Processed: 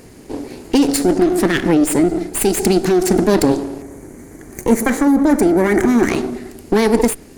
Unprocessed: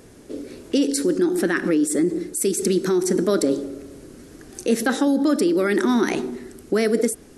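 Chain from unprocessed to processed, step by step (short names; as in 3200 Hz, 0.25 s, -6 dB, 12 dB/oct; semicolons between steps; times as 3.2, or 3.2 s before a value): minimum comb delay 0.43 ms; spectral gain 3.81–6.09, 2400–5700 Hz -11 dB; gain +6.5 dB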